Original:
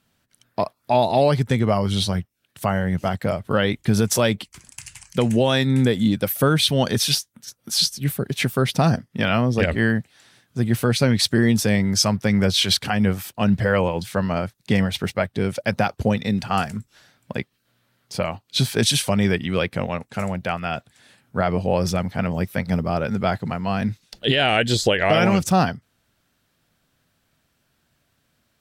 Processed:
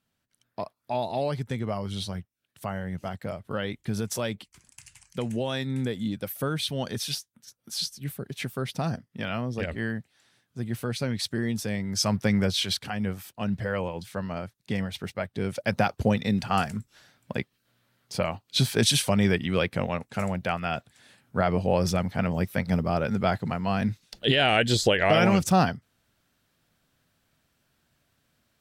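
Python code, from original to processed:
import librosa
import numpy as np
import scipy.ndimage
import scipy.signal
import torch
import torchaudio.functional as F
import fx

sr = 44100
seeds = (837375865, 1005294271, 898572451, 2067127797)

y = fx.gain(x, sr, db=fx.line((11.87, -11.0), (12.18, -2.5), (12.79, -10.0), (15.12, -10.0), (15.8, -3.0)))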